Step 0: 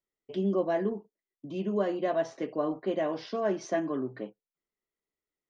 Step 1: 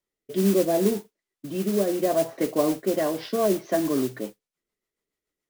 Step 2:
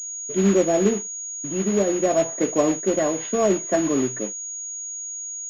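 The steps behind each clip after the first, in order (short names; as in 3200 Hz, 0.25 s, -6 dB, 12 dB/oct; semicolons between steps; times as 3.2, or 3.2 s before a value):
rotary speaker horn 0.7 Hz, later 7 Hz, at 2.56; treble ducked by the level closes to 780 Hz, closed at -25.5 dBFS; modulation noise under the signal 15 dB; gain +8.5 dB
in parallel at -9 dB: companded quantiser 4-bit; on the sum: pulse-width modulation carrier 6700 Hz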